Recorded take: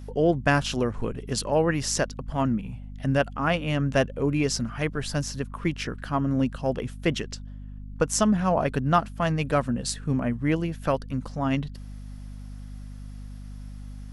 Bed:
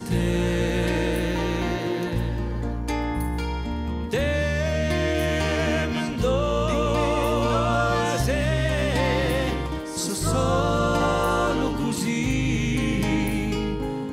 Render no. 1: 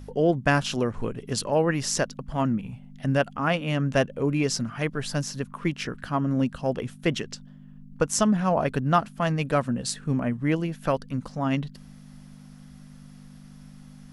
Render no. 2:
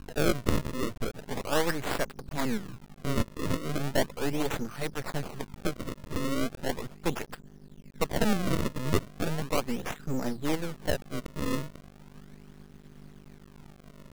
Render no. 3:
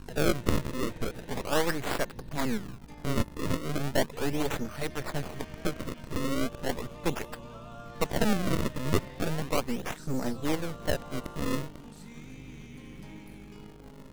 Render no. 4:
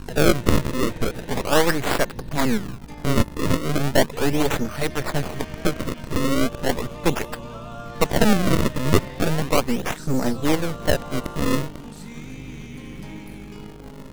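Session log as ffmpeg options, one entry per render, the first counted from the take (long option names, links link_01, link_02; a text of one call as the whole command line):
ffmpeg -i in.wav -af "bandreject=frequency=50:width_type=h:width=4,bandreject=frequency=100:width_type=h:width=4" out.wav
ffmpeg -i in.wav -af "acrusher=samples=32:mix=1:aa=0.000001:lfo=1:lforange=51.2:lforate=0.37,aeval=exprs='max(val(0),0)':channel_layout=same" out.wav
ffmpeg -i in.wav -i bed.wav -filter_complex "[1:a]volume=-24dB[link_01];[0:a][link_01]amix=inputs=2:normalize=0" out.wav
ffmpeg -i in.wav -af "volume=9dB,alimiter=limit=-2dB:level=0:latency=1" out.wav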